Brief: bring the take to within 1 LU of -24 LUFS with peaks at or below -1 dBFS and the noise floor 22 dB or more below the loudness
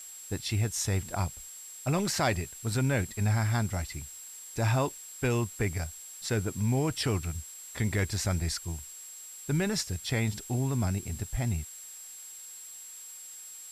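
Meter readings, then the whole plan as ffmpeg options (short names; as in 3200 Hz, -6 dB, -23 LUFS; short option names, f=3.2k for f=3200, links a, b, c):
steady tone 7600 Hz; tone level -44 dBFS; noise floor -46 dBFS; noise floor target -53 dBFS; loudness -31.0 LUFS; peak -15.0 dBFS; loudness target -24.0 LUFS
-> -af "bandreject=f=7.6k:w=30"
-af "afftdn=nr=7:nf=-46"
-af "volume=7dB"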